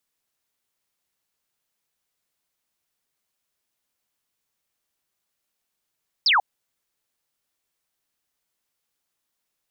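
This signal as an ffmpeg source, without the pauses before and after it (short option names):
-f lavfi -i "aevalsrc='0.178*clip(t/0.002,0,1)*clip((0.14-t)/0.002,0,1)*sin(2*PI*5500*0.14/log(720/5500)*(exp(log(720/5500)*t/0.14)-1))':d=0.14:s=44100"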